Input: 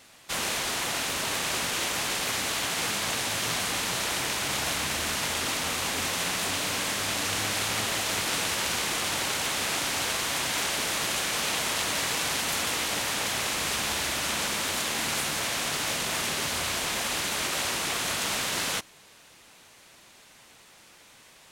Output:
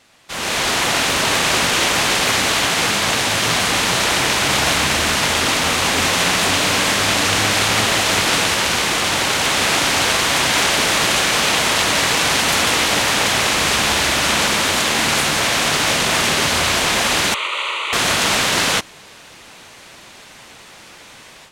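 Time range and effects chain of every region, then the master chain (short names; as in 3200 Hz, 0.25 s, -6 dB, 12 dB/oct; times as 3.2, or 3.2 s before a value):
17.34–17.93 HPF 800 Hz + air absorption 110 m + fixed phaser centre 1100 Hz, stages 8
whole clip: high shelf 9200 Hz -10 dB; AGC gain up to 13 dB; gain +1 dB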